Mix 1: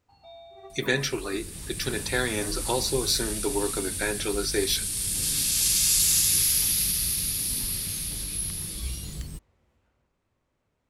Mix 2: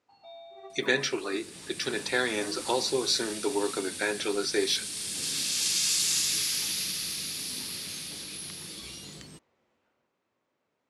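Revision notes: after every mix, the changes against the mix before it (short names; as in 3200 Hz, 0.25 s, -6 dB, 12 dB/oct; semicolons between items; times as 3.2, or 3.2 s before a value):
master: add BPF 250–6700 Hz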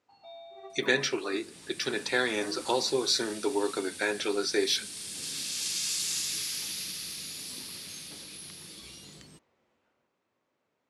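second sound -5.0 dB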